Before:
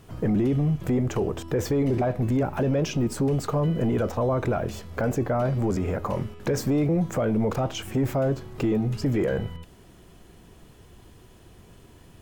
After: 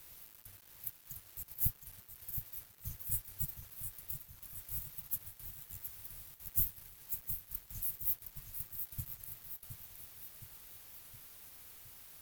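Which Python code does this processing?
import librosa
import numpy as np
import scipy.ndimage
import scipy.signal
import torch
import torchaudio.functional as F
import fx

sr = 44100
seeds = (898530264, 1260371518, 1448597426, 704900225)

y = fx.band_shuffle(x, sr, order='4123')
y = scipy.signal.sosfilt(scipy.signal.cheby2(4, 70, [520.0, 3900.0], 'bandstop', fs=sr, output='sos'), y)
y = fx.quant_companded(y, sr, bits=6)
y = fx.echo_feedback(y, sr, ms=717, feedback_pct=55, wet_db=-8.0)
y = y * librosa.db_to_amplitude(14.0)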